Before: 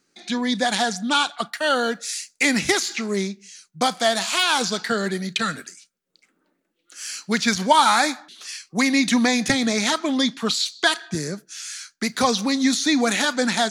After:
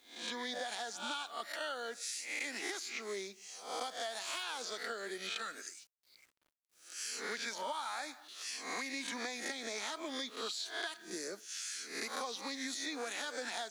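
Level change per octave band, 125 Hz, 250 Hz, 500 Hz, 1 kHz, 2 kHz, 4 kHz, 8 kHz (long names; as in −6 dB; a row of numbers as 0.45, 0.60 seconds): below −30 dB, −26.0 dB, −18.0 dB, −20.0 dB, −17.0 dB, −17.0 dB, −15.0 dB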